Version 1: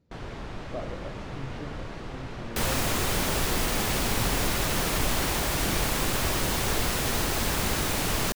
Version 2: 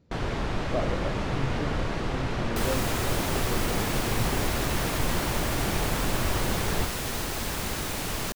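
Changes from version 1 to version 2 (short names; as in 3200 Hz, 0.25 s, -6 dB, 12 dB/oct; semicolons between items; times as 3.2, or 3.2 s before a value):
speech +6.5 dB; first sound +8.5 dB; second sound -4.0 dB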